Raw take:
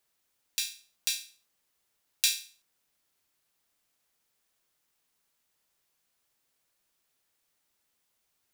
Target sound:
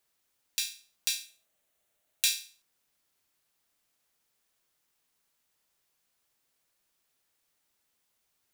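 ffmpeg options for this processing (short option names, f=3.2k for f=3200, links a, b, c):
-filter_complex "[0:a]asettb=1/sr,asplit=3[a][b][c];[a]atrim=end=1.254[d];[b]atrim=start=1.25:end=2.26,asetpts=PTS-STARTPTS,afade=t=in:d=0.004:c=qsin,afade=t=out:st=1.006:d=0.004:c=qsin,equalizer=f=630:t=o:w=0.33:g=11,equalizer=f=1k:t=o:w=0.33:g=-4,equalizer=f=5k:t=o:w=0.33:g=-7[e];[c]atrim=start=2.256[f];[d][e]acrossfade=d=0.004:c1=hsin:c2=qsin[g];[g][f]acrossfade=d=0.004:c1=qsin:c2=hsin"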